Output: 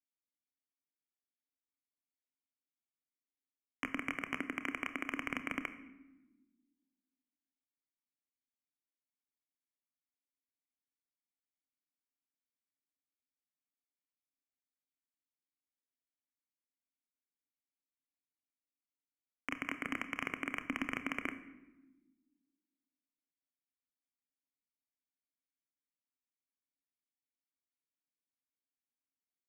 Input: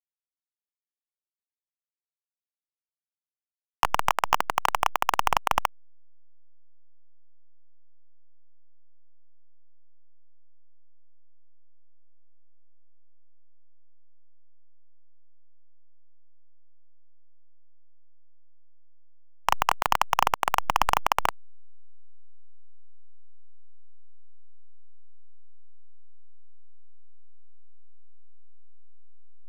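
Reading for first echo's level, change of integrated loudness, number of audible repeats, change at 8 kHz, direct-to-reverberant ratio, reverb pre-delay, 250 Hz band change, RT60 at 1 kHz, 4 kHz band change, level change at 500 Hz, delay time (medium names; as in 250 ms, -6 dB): no echo, -14.0 dB, no echo, -21.5 dB, 9.5 dB, 26 ms, +4.0 dB, 1.0 s, -17.5 dB, -15.0 dB, no echo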